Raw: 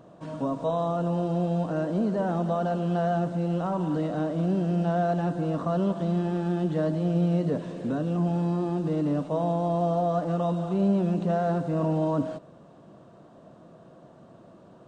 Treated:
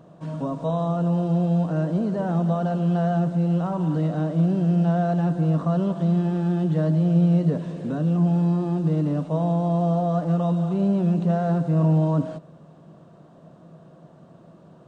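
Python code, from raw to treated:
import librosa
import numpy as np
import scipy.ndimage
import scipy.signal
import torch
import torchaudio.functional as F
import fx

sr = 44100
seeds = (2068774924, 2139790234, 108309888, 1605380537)

y = fx.peak_eq(x, sr, hz=160.0, db=10.5, octaves=0.27)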